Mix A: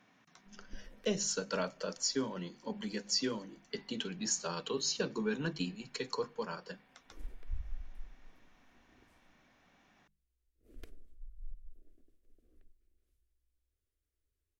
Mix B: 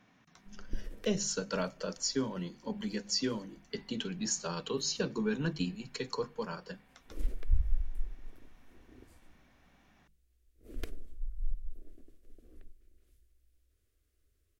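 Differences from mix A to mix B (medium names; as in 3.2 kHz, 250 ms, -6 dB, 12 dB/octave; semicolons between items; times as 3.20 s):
speech: add bass shelf 140 Hz +11 dB; background +11.5 dB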